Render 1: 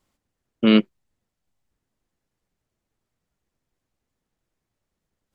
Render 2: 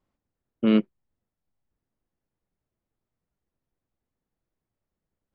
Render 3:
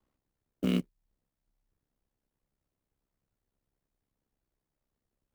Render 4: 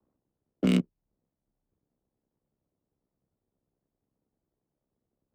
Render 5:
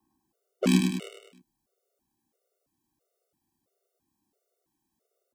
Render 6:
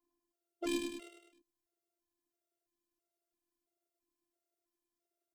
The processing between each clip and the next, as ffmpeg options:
-af "lowpass=f=1.3k:p=1,volume=-4dB"
-filter_complex "[0:a]aeval=exprs='val(0)*sin(2*PI*33*n/s)':c=same,acrossover=split=140|3000[a][b][c];[b]acompressor=threshold=-37dB:ratio=2.5[d];[a][d][c]amix=inputs=3:normalize=0,acrusher=bits=6:mode=log:mix=0:aa=0.000001,volume=2.5dB"
-filter_complex "[0:a]adynamicsmooth=sensitivity=6.5:basefreq=740,highpass=f=190:p=1,acrossover=split=260|3000[a][b][c];[b]acompressor=threshold=-38dB:ratio=6[d];[a][d][c]amix=inputs=3:normalize=0,volume=9dB"
-af "bass=f=250:g=-11,treble=f=4k:g=7,aecho=1:1:102|204|306|408|510|612:0.562|0.281|0.141|0.0703|0.0351|0.0176,afftfilt=real='re*gt(sin(2*PI*1.5*pts/sr)*(1-2*mod(floor(b*sr/1024/380),2)),0)':imag='im*gt(sin(2*PI*1.5*pts/sr)*(1-2*mod(floor(b*sr/1024/380),2)),0)':win_size=1024:overlap=0.75,volume=8dB"
-af "afftfilt=real='hypot(re,im)*cos(PI*b)':imag='0':win_size=512:overlap=0.75,volume=-7dB"

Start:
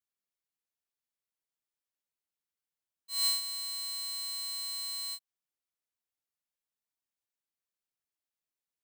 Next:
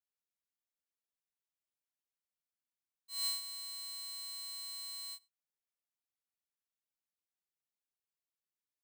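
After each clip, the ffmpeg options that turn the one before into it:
-filter_complex "[0:a]asplit=2[a][b];[b]adelay=99.13,volume=-27dB,highshelf=f=4k:g=-2.23[c];[a][c]amix=inputs=2:normalize=0,volume=-7dB"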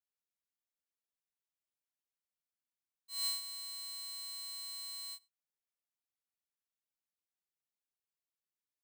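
-af anull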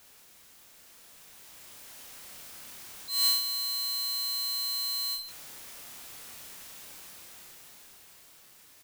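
-filter_complex "[0:a]aeval=exprs='val(0)+0.5*0.00447*sgn(val(0))':c=same,dynaudnorm=f=260:g=13:m=10dB,asplit=2[a][b];[b]adelay=30,volume=-5dB[c];[a][c]amix=inputs=2:normalize=0"

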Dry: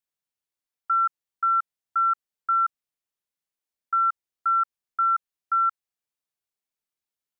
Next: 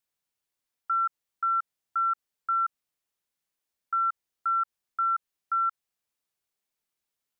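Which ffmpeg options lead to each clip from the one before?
-af "alimiter=level_in=2dB:limit=-24dB:level=0:latency=1:release=60,volume=-2dB,volume=4dB"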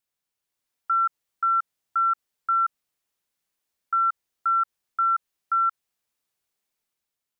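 -af "dynaudnorm=f=100:g=11:m=4dB"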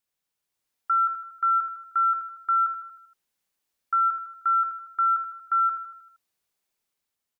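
-af "aecho=1:1:78|156|234|312|390|468:0.398|0.207|0.108|0.056|0.0291|0.0151"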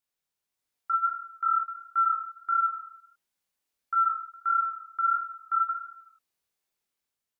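-af "flanger=delay=20:depth=6.3:speed=1.5"

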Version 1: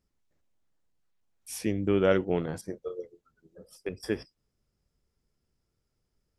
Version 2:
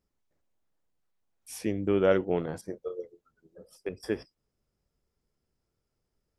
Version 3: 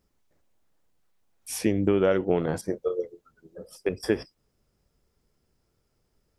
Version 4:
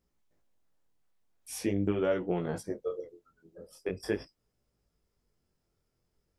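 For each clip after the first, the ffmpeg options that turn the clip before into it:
-af "equalizer=f=640:t=o:w=2.5:g=4.5,volume=-3.5dB"
-af "acompressor=threshold=-26dB:ratio=10,volume=8.5dB"
-af "flanger=delay=17:depth=6.9:speed=0.43,volume=-3.5dB"

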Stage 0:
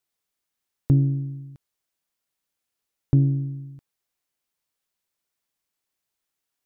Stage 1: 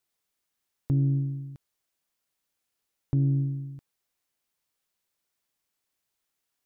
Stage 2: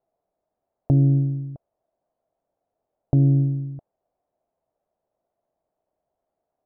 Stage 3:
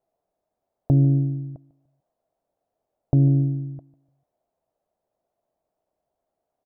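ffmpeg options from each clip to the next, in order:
-af "alimiter=limit=-19dB:level=0:latency=1:release=181,volume=1dB"
-af "lowpass=f=660:t=q:w=5.3,volume=6.5dB"
-af "aecho=1:1:148|296|444:0.106|0.0371|0.013"

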